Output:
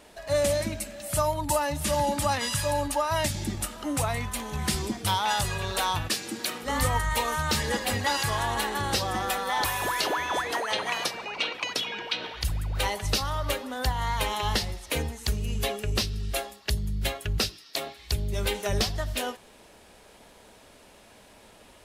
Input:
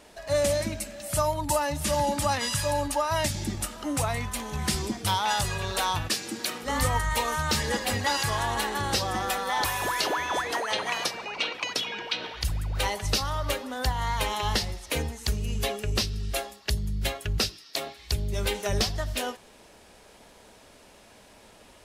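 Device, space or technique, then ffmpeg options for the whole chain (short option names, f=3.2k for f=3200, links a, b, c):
exciter from parts: -filter_complex "[0:a]asplit=2[a][b];[b]highpass=3.2k,asoftclip=type=tanh:threshold=-22dB,highpass=f=4.2k:w=0.5412,highpass=f=4.2k:w=1.3066,volume=-13dB[c];[a][c]amix=inputs=2:normalize=0"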